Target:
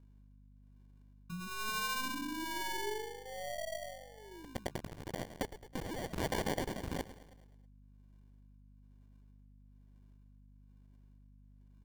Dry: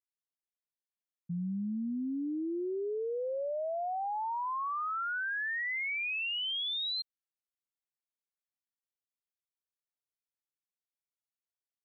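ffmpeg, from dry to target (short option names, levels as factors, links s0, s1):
-filter_complex "[0:a]aeval=exprs='val(0)+0.5*0.00133*sgn(val(0))':c=same,flanger=delay=1.9:depth=8.4:regen=-85:speed=0.29:shape=triangular,acrossover=split=220|700[s0][s1][s2];[s0]acontrast=65[s3];[s2]acrusher=bits=5:mix=0:aa=0.000001[s4];[s3][s1][s4]amix=inputs=3:normalize=0,tremolo=f=1.1:d=0.81,asplit=2[s5][s6];[s6]acompressor=threshold=0.00398:ratio=6,volume=0.944[s7];[s5][s7]amix=inputs=2:normalize=0,aeval=exprs='0.0708*(cos(1*acos(clip(val(0)/0.0708,-1,1)))-cos(1*PI/2))+0.0158*(cos(3*acos(clip(val(0)/0.0708,-1,1)))-cos(3*PI/2))+0.00562*(cos(5*acos(clip(val(0)/0.0708,-1,1)))-cos(5*PI/2))+0.00224*(cos(6*acos(clip(val(0)/0.0708,-1,1)))-cos(6*PI/2))':c=same,equalizer=f=125:t=o:w=1:g=-5,equalizer=f=250:t=o:w=1:g=4,equalizer=f=500:t=o:w=1:g=-7,equalizer=f=1000:t=o:w=1:g=-6,equalizer=f=2000:t=o:w=1:g=-11,aecho=1:1:107|214|321|428|535|642:0.211|0.116|0.0639|0.0352|0.0193|0.0106,acrusher=samples=34:mix=1:aa=0.000001,aeval=exprs='val(0)+0.000398*(sin(2*PI*50*n/s)+sin(2*PI*2*50*n/s)/2+sin(2*PI*3*50*n/s)/3+sin(2*PI*4*50*n/s)/4+sin(2*PI*5*50*n/s)/5)':c=same,afftfilt=real='re*lt(hypot(re,im),0.0562)':imag='im*lt(hypot(re,im),0.0562)':win_size=1024:overlap=0.75,volume=2.99"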